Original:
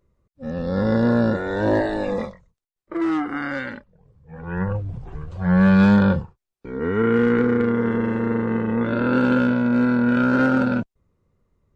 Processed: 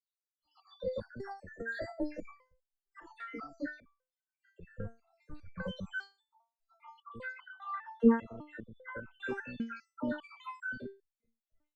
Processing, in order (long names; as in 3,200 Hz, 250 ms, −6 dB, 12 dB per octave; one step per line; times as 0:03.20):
time-frequency cells dropped at random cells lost 80%
all-pass dispersion lows, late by 99 ms, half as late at 1,200 Hz
step-sequenced resonator 5 Hz 230–1,500 Hz
level +9 dB